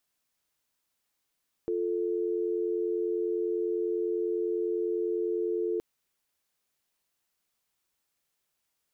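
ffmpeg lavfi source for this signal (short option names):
-f lavfi -i "aevalsrc='0.0335*(sin(2*PI*350*t)+sin(2*PI*440*t))':d=4.12:s=44100"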